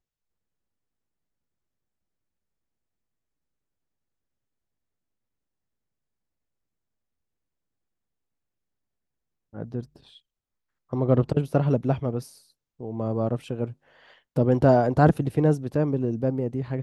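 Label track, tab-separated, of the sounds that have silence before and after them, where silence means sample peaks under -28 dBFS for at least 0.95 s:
9.570000	9.810000	sound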